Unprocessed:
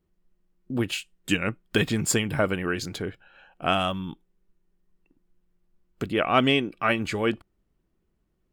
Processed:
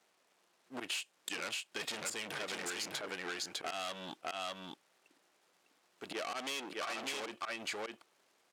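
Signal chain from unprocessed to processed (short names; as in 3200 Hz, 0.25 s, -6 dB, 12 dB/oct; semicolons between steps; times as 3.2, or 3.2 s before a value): G.711 law mismatch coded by A; auto swell 0.176 s; echo 0.603 s -6.5 dB; tube stage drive 39 dB, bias 0.2; high shelf 4600 Hz +11 dB; added noise pink -80 dBFS; HPF 480 Hz 12 dB/oct; air absorption 53 m; compressor 4:1, threshold -47 dBFS, peak gain reduction 9 dB; gain +10 dB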